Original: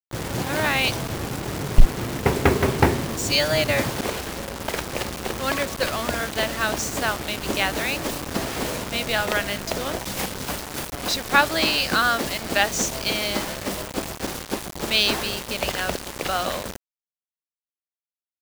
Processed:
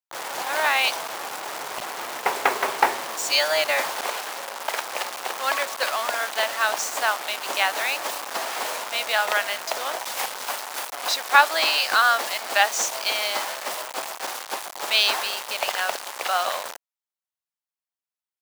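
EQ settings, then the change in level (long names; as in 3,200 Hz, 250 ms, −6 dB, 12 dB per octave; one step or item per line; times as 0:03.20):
high-pass with resonance 810 Hz, resonance Q 1.5
0.0 dB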